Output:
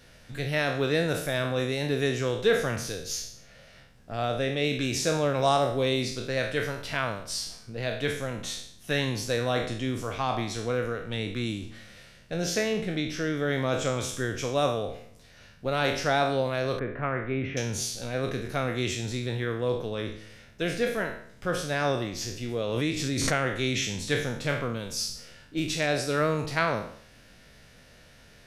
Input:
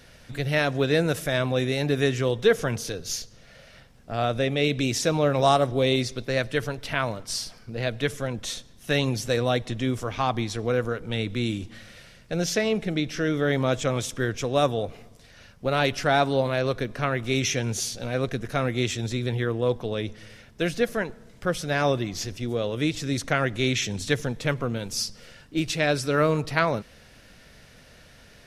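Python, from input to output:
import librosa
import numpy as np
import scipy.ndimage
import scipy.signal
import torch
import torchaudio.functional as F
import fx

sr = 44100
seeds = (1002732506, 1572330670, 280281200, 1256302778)

y = fx.spec_trails(x, sr, decay_s=0.59)
y = fx.lowpass(y, sr, hz=2100.0, slope=24, at=(16.79, 17.57))
y = fx.pre_swell(y, sr, db_per_s=27.0, at=(22.6, 23.43))
y = y * librosa.db_to_amplitude(-4.5)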